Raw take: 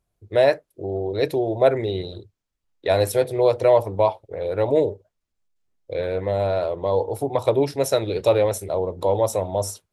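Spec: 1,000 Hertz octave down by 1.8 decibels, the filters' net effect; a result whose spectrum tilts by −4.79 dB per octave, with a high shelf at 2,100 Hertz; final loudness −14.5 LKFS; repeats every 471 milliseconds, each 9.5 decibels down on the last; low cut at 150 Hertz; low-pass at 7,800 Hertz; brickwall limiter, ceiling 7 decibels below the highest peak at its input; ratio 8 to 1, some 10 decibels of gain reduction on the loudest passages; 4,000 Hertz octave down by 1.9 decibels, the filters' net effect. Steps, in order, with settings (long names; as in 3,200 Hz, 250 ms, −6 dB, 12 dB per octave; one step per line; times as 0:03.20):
high-pass filter 150 Hz
low-pass filter 7,800 Hz
parametric band 1,000 Hz −3.5 dB
high-shelf EQ 2,100 Hz +6 dB
parametric band 4,000 Hz −7 dB
downward compressor 8 to 1, threshold −23 dBFS
brickwall limiter −20 dBFS
repeating echo 471 ms, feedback 33%, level −9.5 dB
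level +16 dB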